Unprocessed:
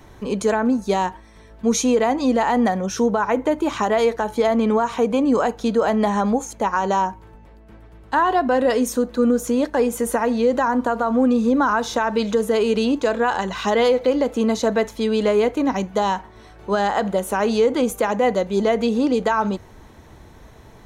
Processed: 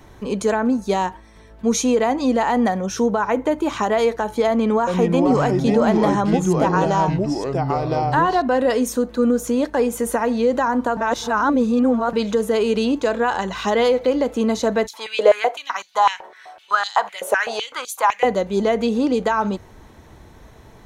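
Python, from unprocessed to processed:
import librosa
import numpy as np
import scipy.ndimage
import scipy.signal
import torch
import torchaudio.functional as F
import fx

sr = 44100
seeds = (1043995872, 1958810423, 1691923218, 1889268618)

y = fx.echo_pitch(x, sr, ms=381, semitones=-4, count=2, db_per_echo=-3.0, at=(4.49, 8.42))
y = fx.filter_held_highpass(y, sr, hz=7.9, low_hz=530.0, high_hz=4100.0, at=(14.86, 18.23), fade=0.02)
y = fx.edit(y, sr, fx.reverse_span(start_s=10.97, length_s=1.16), tone=tone)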